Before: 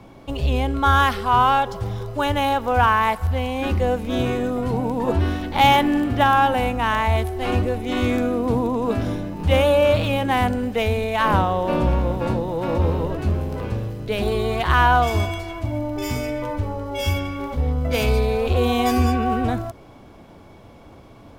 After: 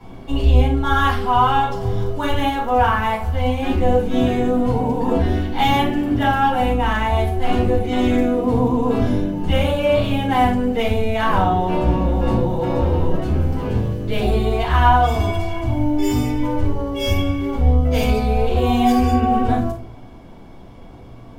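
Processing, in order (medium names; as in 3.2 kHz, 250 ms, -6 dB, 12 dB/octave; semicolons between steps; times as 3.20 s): in parallel at -3 dB: gain riding 0.5 s; on the sum: simulated room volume 310 m³, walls furnished, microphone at 7.3 m; trim -16 dB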